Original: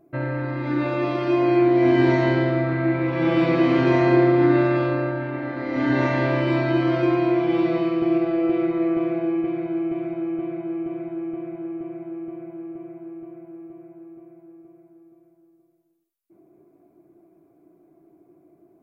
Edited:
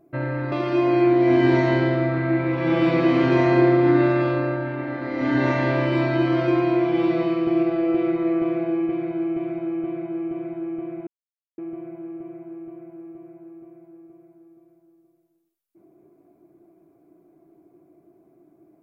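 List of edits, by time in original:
0:00.52–0:01.07: remove
0:11.62–0:12.13: silence

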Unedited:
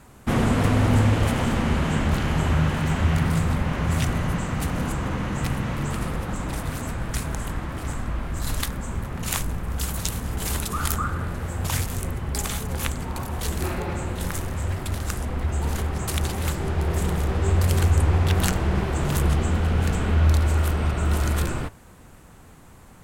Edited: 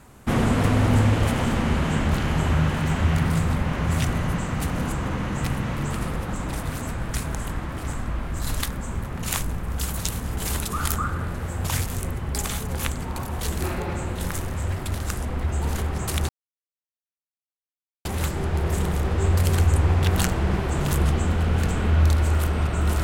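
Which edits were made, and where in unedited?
0:16.29: splice in silence 1.76 s

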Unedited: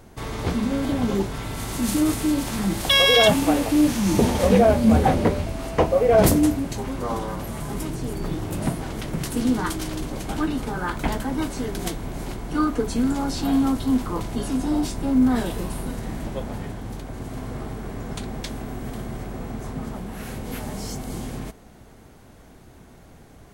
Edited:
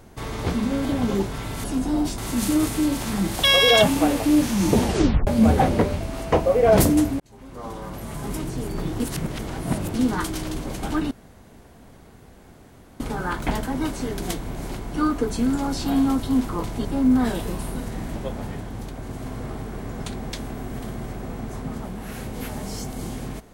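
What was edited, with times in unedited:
0:04.31: tape stop 0.42 s
0:06.66–0:07.79: fade in
0:08.46–0:09.40: reverse
0:10.57: splice in room tone 1.89 s
0:14.42–0:14.96: move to 0:01.64

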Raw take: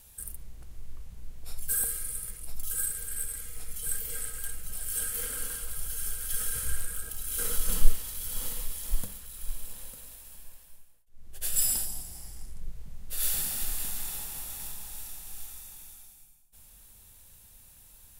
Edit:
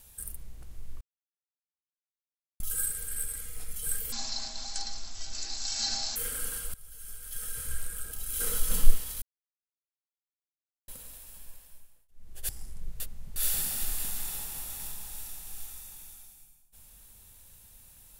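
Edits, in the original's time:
0:01.01–0:02.60: silence
0:04.12–0:05.14: play speed 50%
0:05.72–0:07.35: fade in, from −18 dB
0:08.20–0:09.86: silence
0:11.47–0:12.29: remove
0:12.80–0:13.16: reverse

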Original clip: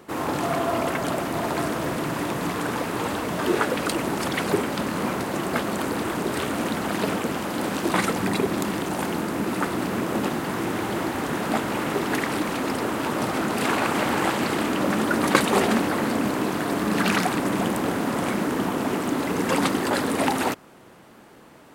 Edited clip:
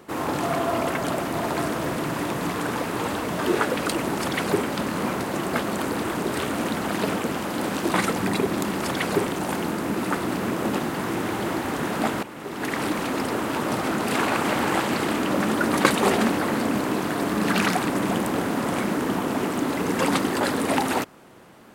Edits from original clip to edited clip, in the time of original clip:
0:04.14–0:04.64: duplicate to 0:08.77
0:11.73–0:12.29: fade in quadratic, from −13.5 dB

